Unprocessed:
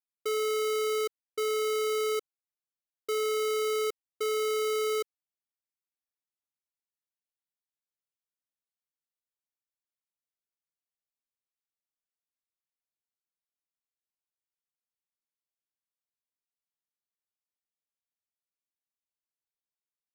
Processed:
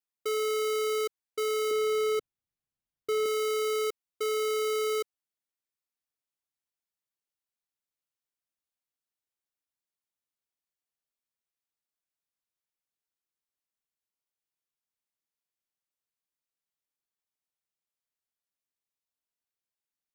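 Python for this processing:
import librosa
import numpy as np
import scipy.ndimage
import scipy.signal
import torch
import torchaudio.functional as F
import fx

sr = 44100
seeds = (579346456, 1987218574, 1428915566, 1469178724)

y = fx.bass_treble(x, sr, bass_db=15, treble_db=-4, at=(1.71, 3.26))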